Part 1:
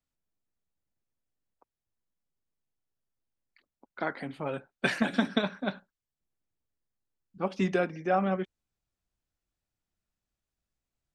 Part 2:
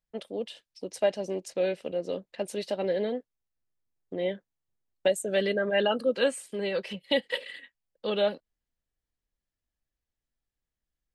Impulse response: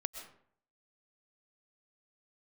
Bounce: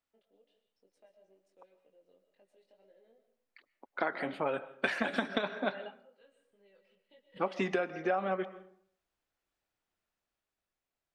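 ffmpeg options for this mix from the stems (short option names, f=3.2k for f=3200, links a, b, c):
-filter_complex "[0:a]dynaudnorm=f=160:g=13:m=3dB,volume=1dB,asplit=3[a][b][c];[b]volume=-9.5dB[d];[1:a]lowshelf=f=190:g=10,acompressor=threshold=-40dB:ratio=2,flanger=delay=20:depth=2.1:speed=2.1,volume=-6.5dB,asplit=2[e][f];[f]volume=-18.5dB[g];[c]apad=whole_len=491447[h];[e][h]sidechaingate=range=-33dB:threshold=-48dB:ratio=16:detection=peak[i];[2:a]atrim=start_sample=2205[j];[d][g]amix=inputs=2:normalize=0[k];[k][j]afir=irnorm=-1:irlink=0[l];[a][i][l]amix=inputs=3:normalize=0,bass=f=250:g=-14,treble=f=4k:g=-8,acompressor=threshold=-28dB:ratio=6"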